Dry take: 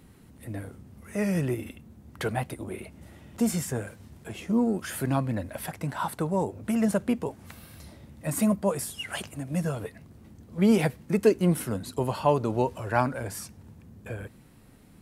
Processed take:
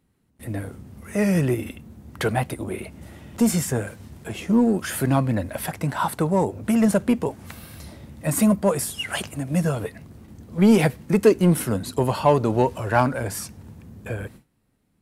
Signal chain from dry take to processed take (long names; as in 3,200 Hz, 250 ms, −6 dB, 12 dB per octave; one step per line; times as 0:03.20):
noise gate with hold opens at −42 dBFS
in parallel at −6 dB: hard clipping −21 dBFS, distortion −10 dB
on the sum: level +3 dB